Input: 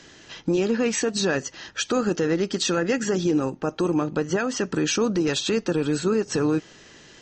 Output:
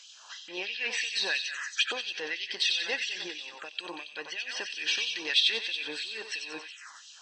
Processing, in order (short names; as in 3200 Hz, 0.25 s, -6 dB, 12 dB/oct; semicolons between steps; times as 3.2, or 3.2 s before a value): thinning echo 92 ms, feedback 68%, high-pass 880 Hz, level -6.5 dB; envelope phaser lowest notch 300 Hz, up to 1300 Hz, full sweep at -23.5 dBFS; LFO high-pass sine 3 Hz 1000–3200 Hz